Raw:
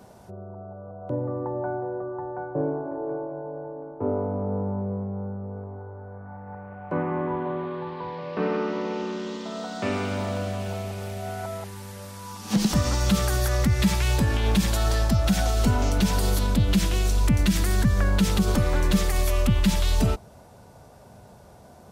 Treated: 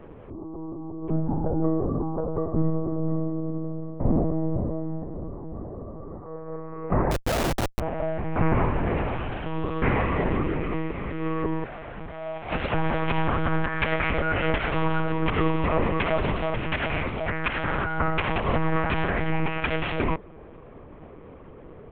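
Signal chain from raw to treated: mistuned SSB -320 Hz 430–2900 Hz; monotone LPC vocoder at 8 kHz 160 Hz; 7.11–7.80 s: Schmitt trigger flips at -43 dBFS; trim +8.5 dB

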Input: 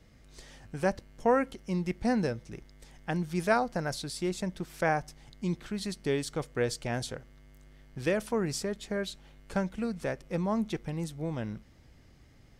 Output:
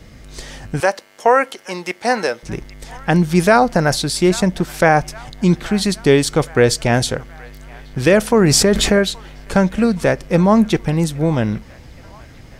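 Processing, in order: 0.80–2.43 s: high-pass 590 Hz 12 dB/octave; on a send: feedback echo behind a band-pass 823 ms, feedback 56%, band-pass 1.5 kHz, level -21 dB; on the sum: loudness maximiser +18.5 dB; 8.37–8.99 s: level flattener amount 70%; trim -1 dB

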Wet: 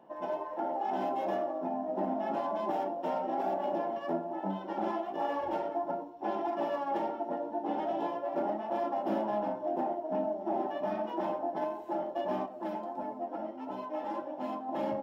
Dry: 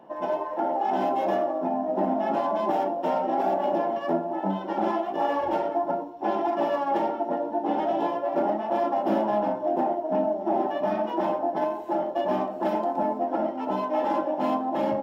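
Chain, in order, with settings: 12.46–14.69 s: flange 1.6 Hz, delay 6.9 ms, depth 3.6 ms, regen +43%; trim -7.5 dB

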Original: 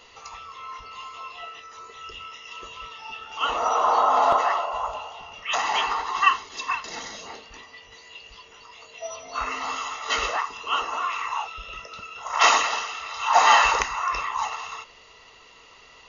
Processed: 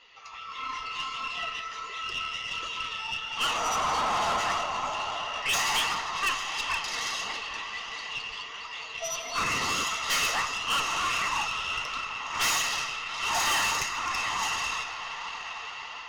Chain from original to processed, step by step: level rider gain up to 11 dB; echo that smears into a reverb 883 ms, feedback 47%, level -12 dB; flange 1.5 Hz, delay 2.9 ms, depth 8.6 ms, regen +33%; level-controlled noise filter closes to 2.7 kHz, open at -15.5 dBFS; tilt shelf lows -9 dB, about 1.5 kHz; valve stage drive 21 dB, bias 0.55; on a send at -14 dB: reverberation RT60 1.2 s, pre-delay 95 ms; 9.37–9.83 s: on the sum: band noise 54–490 Hz -39 dBFS; in parallel at -2 dB: peak limiter -27.5 dBFS, peak gain reduction 10.5 dB; on the sum: band-stop 4 kHz, Q 27; trim -4 dB

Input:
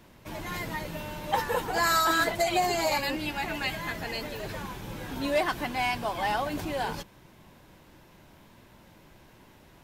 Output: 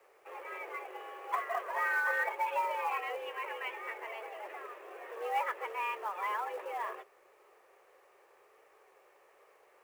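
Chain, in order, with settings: mistuned SSB +210 Hz 190–2400 Hz; companded quantiser 6-bit; trim -6.5 dB

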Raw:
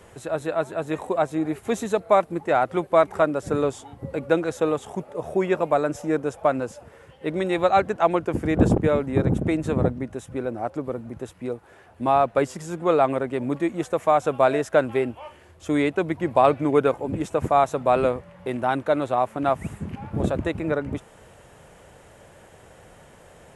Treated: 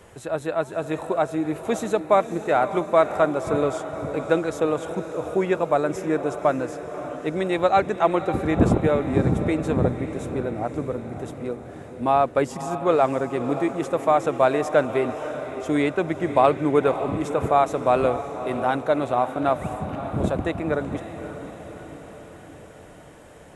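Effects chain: echo that smears into a reverb 572 ms, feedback 59%, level -11 dB

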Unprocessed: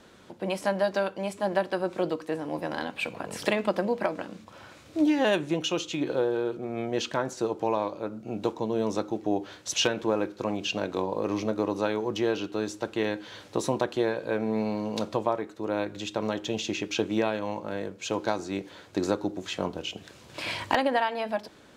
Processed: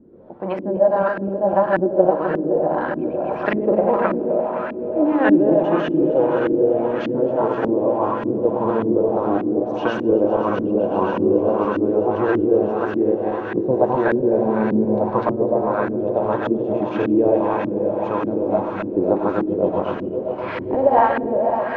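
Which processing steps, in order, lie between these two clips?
backward echo that repeats 128 ms, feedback 72%, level -2 dB; echo with a slow build-up 132 ms, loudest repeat 8, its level -18 dB; on a send at -11 dB: reverberation RT60 1.2 s, pre-delay 75 ms; on the sum: LFO low-pass saw up 1.7 Hz 270–1700 Hz; trim +3 dB

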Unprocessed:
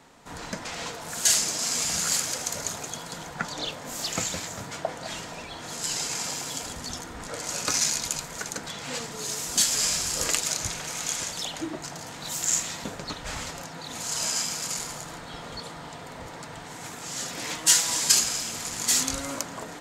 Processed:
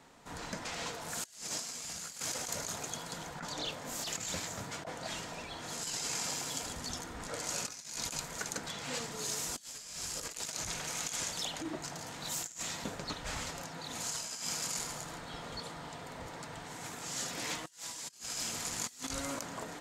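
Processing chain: compressor with a negative ratio -31 dBFS, ratio -0.5; trim -7.5 dB

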